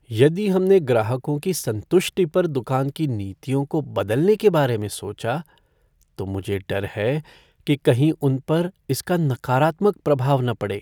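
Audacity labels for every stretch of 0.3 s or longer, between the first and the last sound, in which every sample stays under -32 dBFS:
5.410000	6.190000	silence
7.200000	7.670000	silence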